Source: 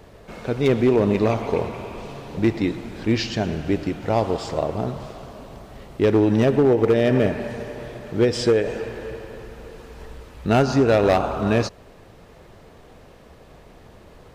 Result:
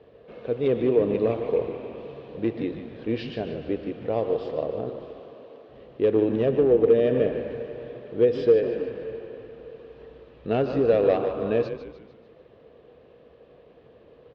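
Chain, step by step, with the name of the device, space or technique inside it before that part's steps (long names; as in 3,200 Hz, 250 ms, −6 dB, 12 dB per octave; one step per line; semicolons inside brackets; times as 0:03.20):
0:04.89–0:05.69: high-pass filter 260 Hz 24 dB per octave
frequency-shifting delay pedal into a guitar cabinet (echo with shifted repeats 149 ms, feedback 49%, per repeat −88 Hz, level −9.5 dB; loudspeaker in its box 90–3,400 Hz, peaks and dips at 93 Hz −7 dB, 180 Hz −6 dB, 480 Hz +10 dB, 880 Hz −7 dB, 1,400 Hz −6 dB, 2,100 Hz −6 dB)
level −7 dB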